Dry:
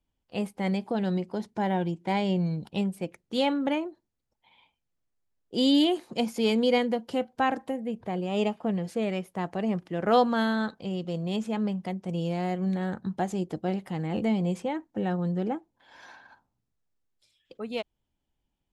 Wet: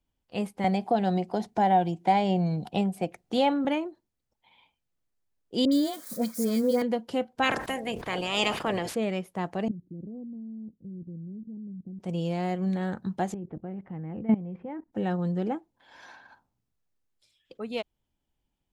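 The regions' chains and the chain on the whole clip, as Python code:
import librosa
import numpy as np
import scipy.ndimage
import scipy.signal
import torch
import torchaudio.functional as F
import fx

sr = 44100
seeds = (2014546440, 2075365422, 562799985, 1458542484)

y = fx.chain(x, sr, fx.peak_eq(hz=730.0, db=14.5, octaves=0.27),
    fx.band_squash(depth_pct=40), at=(0.64, 3.65))
y = fx.chain(y, sr, fx.crossing_spikes(level_db=-31.5),
    fx.fixed_phaser(hz=560.0, stages=8),
    fx.dispersion(late='highs', ms=69.0, hz=1500.0), at=(5.65, 6.82))
y = fx.spec_clip(y, sr, under_db=22, at=(7.42, 8.94), fade=0.02)
y = fx.sustainer(y, sr, db_per_s=88.0, at=(7.42, 8.94), fade=0.02)
y = fx.chain(y, sr, fx.cheby2_lowpass(hz=1800.0, order=4, stop_db=80),
    fx.level_steps(step_db=13), at=(9.68, 12.0))
y = fx.chain(y, sr, fx.lowpass(hz=2200.0, slope=24),
    fx.low_shelf(hz=340.0, db=9.0),
    fx.level_steps(step_db=18), at=(13.34, 14.93))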